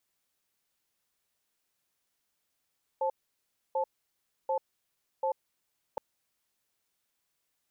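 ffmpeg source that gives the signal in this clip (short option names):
-f lavfi -i "aevalsrc='0.0355*(sin(2*PI*532*t)+sin(2*PI*872*t))*clip(min(mod(t,0.74),0.09-mod(t,0.74))/0.005,0,1)':d=2.97:s=44100"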